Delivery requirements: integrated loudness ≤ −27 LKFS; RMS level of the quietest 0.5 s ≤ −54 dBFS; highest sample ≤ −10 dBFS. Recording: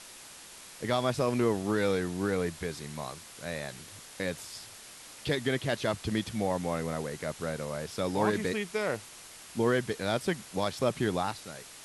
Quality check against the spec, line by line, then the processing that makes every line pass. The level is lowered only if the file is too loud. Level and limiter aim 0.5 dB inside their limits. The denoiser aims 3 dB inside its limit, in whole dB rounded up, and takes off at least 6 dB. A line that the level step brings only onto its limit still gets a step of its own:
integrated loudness −32.0 LKFS: in spec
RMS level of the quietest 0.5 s −49 dBFS: out of spec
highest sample −12.0 dBFS: in spec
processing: broadband denoise 8 dB, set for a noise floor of −49 dBFS

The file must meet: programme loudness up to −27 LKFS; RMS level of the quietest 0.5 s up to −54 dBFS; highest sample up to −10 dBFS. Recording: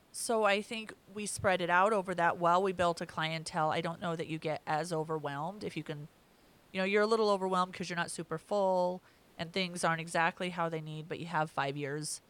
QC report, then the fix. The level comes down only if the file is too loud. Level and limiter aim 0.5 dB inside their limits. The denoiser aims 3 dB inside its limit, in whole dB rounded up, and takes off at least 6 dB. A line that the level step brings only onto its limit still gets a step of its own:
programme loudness −33.0 LKFS: in spec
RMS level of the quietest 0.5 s −64 dBFS: in spec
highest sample −14.0 dBFS: in spec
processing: no processing needed

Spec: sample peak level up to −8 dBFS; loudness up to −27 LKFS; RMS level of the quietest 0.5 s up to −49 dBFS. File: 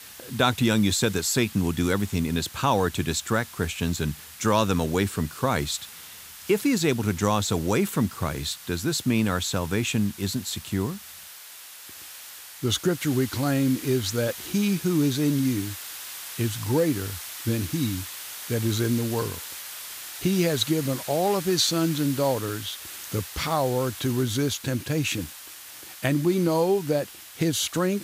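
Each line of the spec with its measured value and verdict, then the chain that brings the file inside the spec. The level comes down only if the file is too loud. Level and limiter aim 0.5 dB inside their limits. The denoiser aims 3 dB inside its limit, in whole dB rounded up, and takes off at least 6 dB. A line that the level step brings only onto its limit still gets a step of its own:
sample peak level −5.5 dBFS: out of spec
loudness −25.5 LKFS: out of spec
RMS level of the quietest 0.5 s −44 dBFS: out of spec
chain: broadband denoise 6 dB, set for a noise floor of −44 dBFS
level −2 dB
brickwall limiter −8.5 dBFS

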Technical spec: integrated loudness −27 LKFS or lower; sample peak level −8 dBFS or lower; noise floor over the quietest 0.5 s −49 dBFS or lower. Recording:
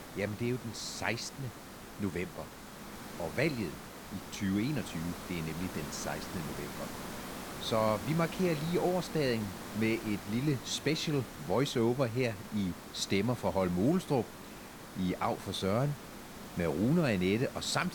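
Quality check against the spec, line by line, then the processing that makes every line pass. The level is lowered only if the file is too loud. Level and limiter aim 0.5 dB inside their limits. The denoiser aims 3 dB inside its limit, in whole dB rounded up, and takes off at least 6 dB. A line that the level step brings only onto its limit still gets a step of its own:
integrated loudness −33.5 LKFS: in spec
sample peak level −14.5 dBFS: in spec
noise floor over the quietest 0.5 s −48 dBFS: out of spec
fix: broadband denoise 6 dB, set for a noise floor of −48 dBFS

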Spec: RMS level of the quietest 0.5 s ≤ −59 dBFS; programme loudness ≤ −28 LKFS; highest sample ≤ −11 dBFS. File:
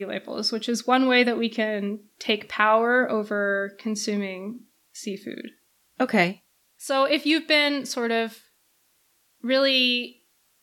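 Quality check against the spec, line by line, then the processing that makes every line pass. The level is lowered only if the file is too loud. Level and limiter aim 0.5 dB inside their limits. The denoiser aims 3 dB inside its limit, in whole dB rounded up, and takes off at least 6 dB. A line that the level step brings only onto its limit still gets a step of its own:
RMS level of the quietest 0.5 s −66 dBFS: in spec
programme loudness −23.0 LKFS: out of spec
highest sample −5.5 dBFS: out of spec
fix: level −5.5 dB
brickwall limiter −11.5 dBFS

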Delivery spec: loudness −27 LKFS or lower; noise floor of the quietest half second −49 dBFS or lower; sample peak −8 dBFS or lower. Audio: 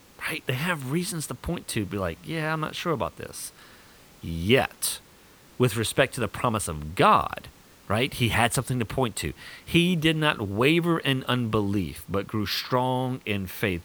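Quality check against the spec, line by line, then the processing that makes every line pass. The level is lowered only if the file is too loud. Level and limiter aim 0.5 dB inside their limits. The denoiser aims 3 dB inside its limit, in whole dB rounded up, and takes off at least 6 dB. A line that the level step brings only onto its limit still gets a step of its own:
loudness −26.0 LKFS: out of spec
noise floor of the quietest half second −53 dBFS: in spec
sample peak −5.5 dBFS: out of spec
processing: level −1.5 dB
brickwall limiter −8.5 dBFS

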